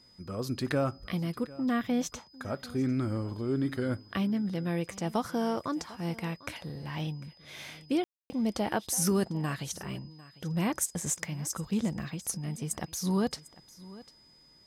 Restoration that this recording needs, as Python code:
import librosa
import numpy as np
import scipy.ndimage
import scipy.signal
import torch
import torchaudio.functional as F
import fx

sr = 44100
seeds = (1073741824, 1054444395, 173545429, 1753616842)

y = fx.notch(x, sr, hz=5000.0, q=30.0)
y = fx.fix_ambience(y, sr, seeds[0], print_start_s=14.11, print_end_s=14.61, start_s=8.04, end_s=8.3)
y = fx.fix_echo_inverse(y, sr, delay_ms=749, level_db=-19.5)